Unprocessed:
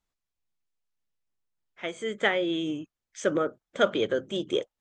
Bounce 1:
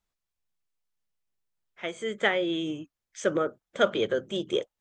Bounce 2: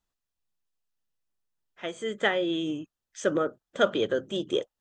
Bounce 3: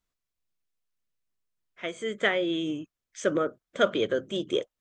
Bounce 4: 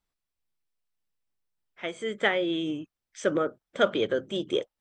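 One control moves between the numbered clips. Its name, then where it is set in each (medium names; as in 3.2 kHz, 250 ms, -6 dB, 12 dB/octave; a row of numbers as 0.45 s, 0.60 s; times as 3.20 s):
band-stop, frequency: 280 Hz, 2.2 kHz, 840 Hz, 6.7 kHz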